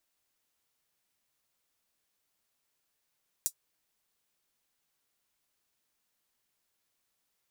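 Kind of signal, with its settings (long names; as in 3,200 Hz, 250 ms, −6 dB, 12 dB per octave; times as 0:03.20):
closed synth hi-hat, high-pass 6,900 Hz, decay 0.08 s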